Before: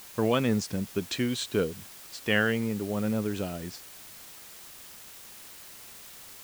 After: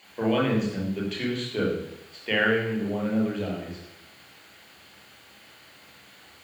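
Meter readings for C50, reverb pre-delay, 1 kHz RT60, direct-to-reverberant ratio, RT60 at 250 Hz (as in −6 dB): 3.5 dB, 26 ms, 0.85 s, −3.0 dB, 0.85 s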